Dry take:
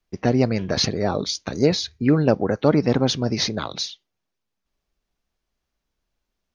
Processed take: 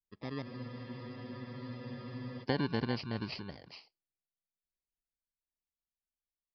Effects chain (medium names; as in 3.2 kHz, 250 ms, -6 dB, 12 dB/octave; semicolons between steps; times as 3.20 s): bit-reversed sample order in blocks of 32 samples; Doppler pass-by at 2.23 s, 24 m/s, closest 2.1 m; resampled via 11.025 kHz; compression 6:1, threshold -34 dBFS, peak gain reduction 17 dB; spectral freeze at 0.46 s, 1.97 s; trim +6.5 dB